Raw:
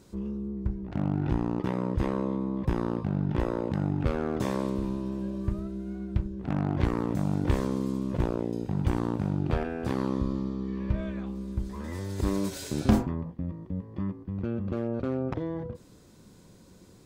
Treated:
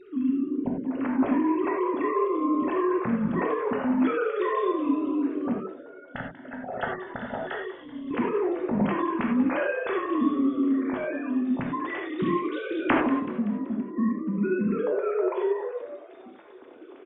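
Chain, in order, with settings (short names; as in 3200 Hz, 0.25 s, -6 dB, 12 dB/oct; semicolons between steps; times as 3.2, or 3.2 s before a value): sine-wave speech; notches 50/100/150/200 Hz; dynamic EQ 410 Hz, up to -7 dB, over -42 dBFS, Q 0.82; 5.59–8.11 fixed phaser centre 1600 Hz, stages 8; frequency-shifting echo 0.19 s, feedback 46%, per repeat +92 Hz, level -15.5 dB; non-linear reverb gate 0.12 s flat, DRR -0.5 dB; gain +6 dB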